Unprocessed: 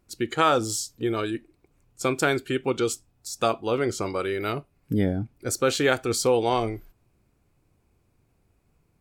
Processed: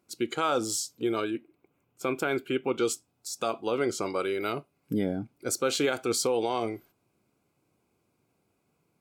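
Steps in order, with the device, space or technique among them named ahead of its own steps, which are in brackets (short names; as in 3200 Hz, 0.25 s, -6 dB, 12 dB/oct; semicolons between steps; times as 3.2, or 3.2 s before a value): PA system with an anti-feedback notch (HPF 180 Hz 12 dB/oct; Butterworth band-stop 1800 Hz, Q 7.4; limiter -15.5 dBFS, peak gain reduction 7.5 dB); 1.24–2.8 band shelf 6400 Hz -9.5 dB; gain -1.5 dB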